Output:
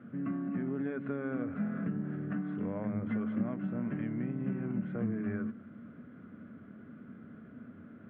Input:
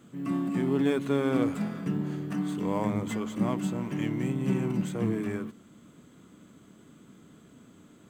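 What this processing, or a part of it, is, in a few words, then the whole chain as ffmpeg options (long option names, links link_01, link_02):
bass amplifier: -af "acompressor=threshold=-35dB:ratio=5,highpass=69,equalizer=frequency=97:width_type=q:width=4:gain=8,equalizer=frequency=230:width_type=q:width=4:gain=9,equalizer=frequency=330:width_type=q:width=4:gain=-3,equalizer=frequency=590:width_type=q:width=4:gain=4,equalizer=frequency=940:width_type=q:width=4:gain=-8,equalizer=frequency=1500:width_type=q:width=4:gain=8,lowpass=frequency=2100:width=0.5412,lowpass=frequency=2100:width=1.3066"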